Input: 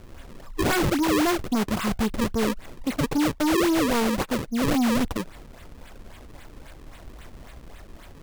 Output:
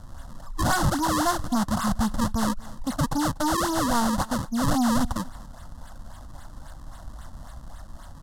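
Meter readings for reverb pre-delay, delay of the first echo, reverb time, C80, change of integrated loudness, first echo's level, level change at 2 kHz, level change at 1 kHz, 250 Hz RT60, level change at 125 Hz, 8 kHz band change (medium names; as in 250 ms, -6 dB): no reverb, 242 ms, no reverb, no reverb, -1.0 dB, -21.5 dB, -2.5 dB, +3.5 dB, no reverb, +2.5 dB, +2.5 dB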